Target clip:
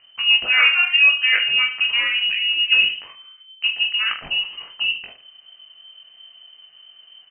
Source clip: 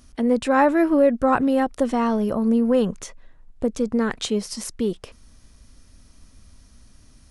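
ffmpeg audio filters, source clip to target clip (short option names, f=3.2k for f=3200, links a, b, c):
-af "aemphasis=mode=production:type=50fm,aecho=1:1:20|45|76.25|115.3|164.1:0.631|0.398|0.251|0.158|0.1,lowpass=f=2.6k:t=q:w=0.5098,lowpass=f=2.6k:t=q:w=0.6013,lowpass=f=2.6k:t=q:w=0.9,lowpass=f=2.6k:t=q:w=2.563,afreqshift=-3100"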